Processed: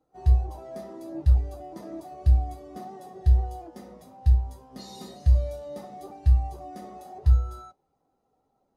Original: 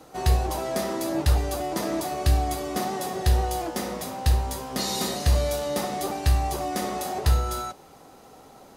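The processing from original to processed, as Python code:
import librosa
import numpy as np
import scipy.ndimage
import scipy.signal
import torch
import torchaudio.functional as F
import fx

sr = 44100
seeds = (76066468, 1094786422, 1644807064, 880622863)

y = fx.low_shelf(x, sr, hz=94.0, db=6.0)
y = fx.spectral_expand(y, sr, expansion=1.5)
y = F.gain(torch.from_numpy(y), -3.0).numpy()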